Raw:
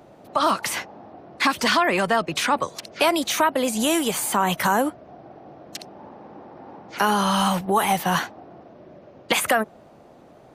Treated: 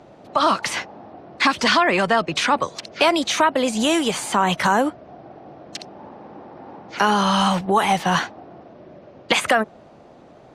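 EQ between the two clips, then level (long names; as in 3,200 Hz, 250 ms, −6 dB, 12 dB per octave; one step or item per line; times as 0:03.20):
high-frequency loss of the air 100 metres
high-shelf EQ 4,100 Hz +7.5 dB
+2.5 dB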